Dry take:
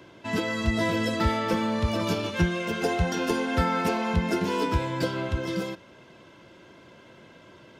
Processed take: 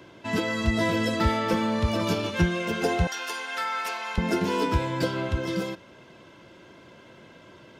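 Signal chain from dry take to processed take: 3.07–4.18 HPF 1100 Hz 12 dB/oct; gain +1 dB

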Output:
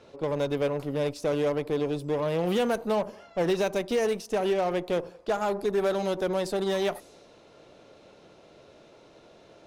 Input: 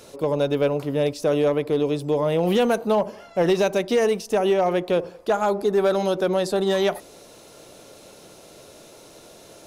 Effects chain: low-pass opened by the level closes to 2900 Hz, open at -21.5 dBFS; added harmonics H 6 -22 dB, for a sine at -13 dBFS; gain -6 dB

